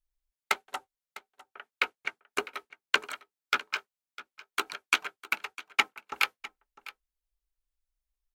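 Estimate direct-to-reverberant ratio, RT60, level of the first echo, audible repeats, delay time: no reverb audible, no reverb audible, −18.0 dB, 1, 653 ms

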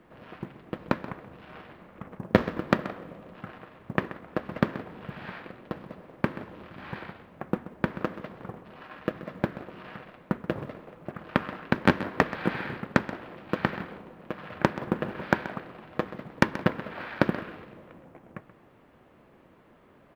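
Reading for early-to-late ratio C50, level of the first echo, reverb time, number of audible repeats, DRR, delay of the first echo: no reverb audible, −15.0 dB, no reverb audible, 1, no reverb audible, 130 ms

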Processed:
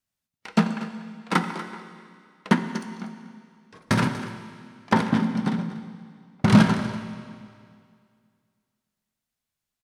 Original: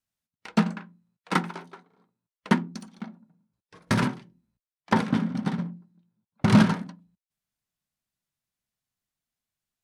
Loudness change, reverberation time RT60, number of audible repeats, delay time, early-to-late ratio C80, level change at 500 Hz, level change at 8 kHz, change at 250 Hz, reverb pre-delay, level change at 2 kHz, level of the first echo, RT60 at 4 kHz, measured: +1.5 dB, 2.2 s, 1, 240 ms, 9.5 dB, +2.5 dB, +2.5 dB, +2.5 dB, 18 ms, +3.0 dB, −15.0 dB, 2.1 s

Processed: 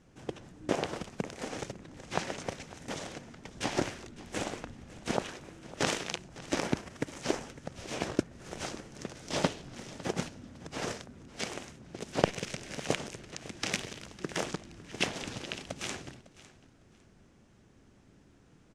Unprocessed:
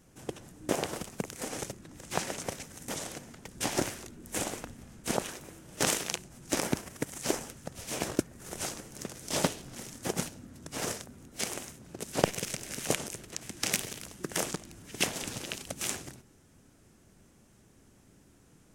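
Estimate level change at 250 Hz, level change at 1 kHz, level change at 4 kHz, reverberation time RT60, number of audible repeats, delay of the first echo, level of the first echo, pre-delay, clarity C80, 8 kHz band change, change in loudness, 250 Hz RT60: 0.0 dB, 0.0 dB, −1.5 dB, no reverb audible, 2, 554 ms, −18.5 dB, no reverb audible, no reverb audible, −8.0 dB, −2.0 dB, no reverb audible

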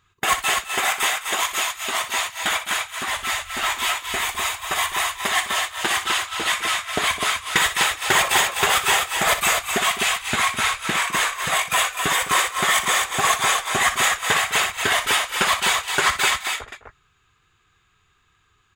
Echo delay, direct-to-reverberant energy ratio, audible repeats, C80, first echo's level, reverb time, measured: 61 ms, no reverb audible, 3, no reverb audible, −11.5 dB, no reverb audible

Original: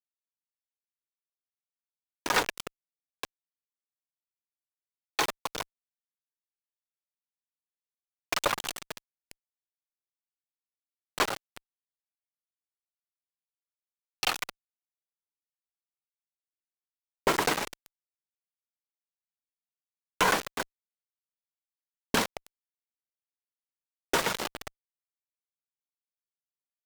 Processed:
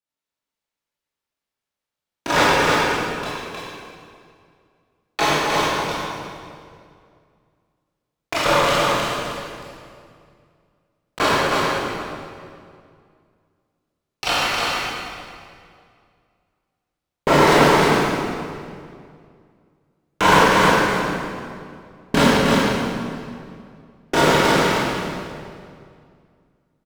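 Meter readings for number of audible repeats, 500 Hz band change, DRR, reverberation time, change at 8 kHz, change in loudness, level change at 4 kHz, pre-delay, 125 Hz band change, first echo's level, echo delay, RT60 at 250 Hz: 1, +17.0 dB, −11.0 dB, 2.3 s, +7.5 dB, +11.5 dB, +12.0 dB, 18 ms, +21.5 dB, −3.5 dB, 312 ms, 2.5 s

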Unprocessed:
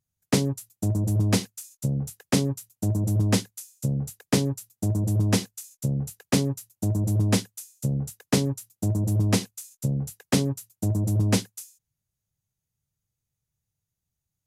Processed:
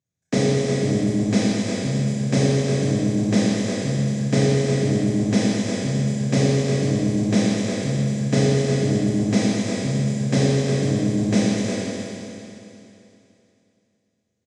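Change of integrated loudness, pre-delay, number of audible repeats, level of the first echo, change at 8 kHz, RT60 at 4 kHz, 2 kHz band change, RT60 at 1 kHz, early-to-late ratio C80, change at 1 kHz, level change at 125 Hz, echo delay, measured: +5.0 dB, 24 ms, 1, −5.0 dB, +1.5 dB, 2.9 s, +6.5 dB, 2.9 s, −4.0 dB, +4.0 dB, +3.0 dB, 358 ms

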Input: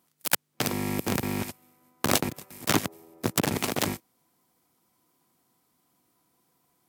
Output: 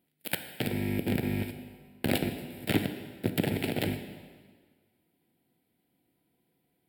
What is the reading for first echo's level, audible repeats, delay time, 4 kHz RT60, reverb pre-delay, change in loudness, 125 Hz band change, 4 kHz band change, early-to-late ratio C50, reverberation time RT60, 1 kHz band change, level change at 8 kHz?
no echo audible, no echo audible, no echo audible, 1.5 s, 11 ms, −3.5 dB, +0.5 dB, −6.0 dB, 9.0 dB, 1.6 s, −9.5 dB, −14.0 dB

